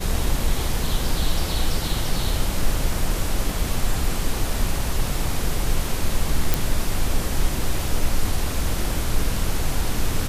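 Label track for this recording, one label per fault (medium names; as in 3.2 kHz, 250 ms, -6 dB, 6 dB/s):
6.540000	6.540000	pop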